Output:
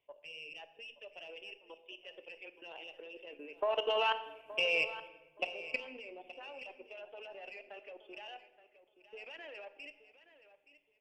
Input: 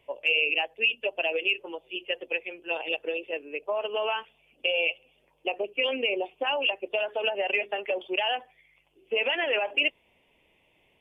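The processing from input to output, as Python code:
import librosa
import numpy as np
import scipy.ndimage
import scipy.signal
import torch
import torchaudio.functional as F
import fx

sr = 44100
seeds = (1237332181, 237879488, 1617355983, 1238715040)

y = fx.diode_clip(x, sr, knee_db=-15.5)
y = fx.doppler_pass(y, sr, speed_mps=6, closest_m=3.0, pass_at_s=4.27)
y = fx.low_shelf(y, sr, hz=270.0, db=-7.0)
y = fx.level_steps(y, sr, step_db=18)
y = fx.echo_feedback(y, sr, ms=873, feedback_pct=22, wet_db=-15)
y = fx.room_shoebox(y, sr, seeds[0], volume_m3=640.0, walls='mixed', distance_m=0.4)
y = y * 10.0 ** (5.5 / 20.0)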